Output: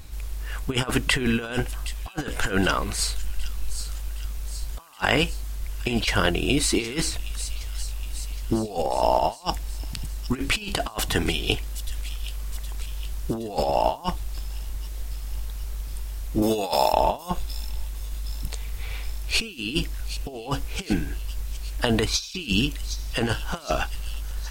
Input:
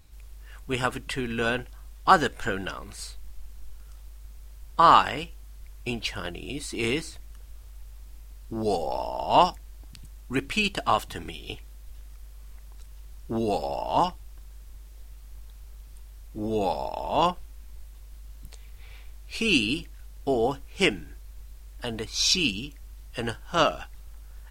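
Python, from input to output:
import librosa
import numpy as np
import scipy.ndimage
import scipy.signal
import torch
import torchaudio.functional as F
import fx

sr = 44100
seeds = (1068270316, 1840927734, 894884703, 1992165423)

p1 = fx.tilt_eq(x, sr, slope=3.0, at=(16.42, 16.93))
p2 = fx.over_compress(p1, sr, threshold_db=-32.0, ratio=-0.5)
p3 = p2 + fx.echo_wet_highpass(p2, sr, ms=767, feedback_pct=58, hz=4000.0, wet_db=-8.5, dry=0)
y = F.gain(torch.from_numpy(p3), 8.0).numpy()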